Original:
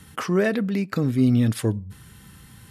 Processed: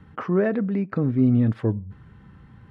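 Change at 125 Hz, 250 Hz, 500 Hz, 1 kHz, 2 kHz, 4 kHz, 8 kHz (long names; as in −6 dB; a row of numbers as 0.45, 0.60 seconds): 0.0 dB, 0.0 dB, 0.0 dB, −1.5 dB, −5.5 dB, below −15 dB, below −30 dB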